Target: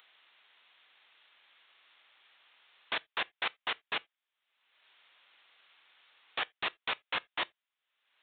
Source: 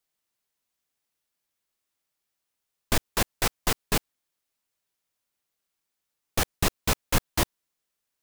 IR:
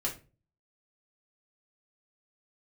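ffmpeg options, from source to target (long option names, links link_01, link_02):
-filter_complex "[0:a]asplit=2[link_01][link_02];[link_02]highpass=frequency=720:poles=1,volume=12dB,asoftclip=type=tanh:threshold=-8.5dB[link_03];[link_01][link_03]amix=inputs=2:normalize=0,lowpass=frequency=1200:poles=1,volume=-6dB,acompressor=mode=upward:threshold=-38dB:ratio=2.5,aresample=8000,aresample=44100,aderivative,asplit=2[link_04][link_05];[1:a]atrim=start_sample=2205,atrim=end_sample=3969,highshelf=frequency=3000:gain=12[link_06];[link_05][link_06]afir=irnorm=-1:irlink=0,volume=-25.5dB[link_07];[link_04][link_07]amix=inputs=2:normalize=0,volume=8dB"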